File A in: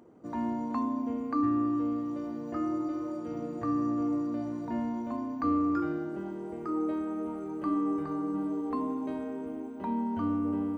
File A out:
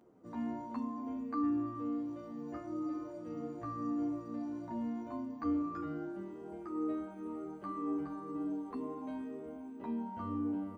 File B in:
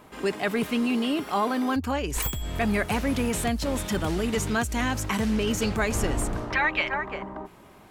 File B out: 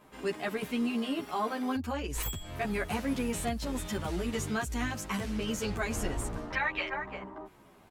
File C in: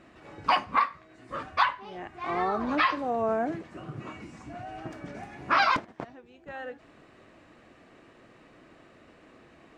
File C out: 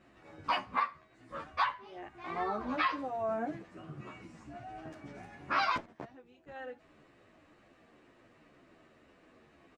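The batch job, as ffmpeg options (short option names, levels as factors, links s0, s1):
-filter_complex "[0:a]asplit=2[s0][s1];[s1]adelay=10.9,afreqshift=-2[s2];[s0][s2]amix=inputs=2:normalize=1,volume=0.631"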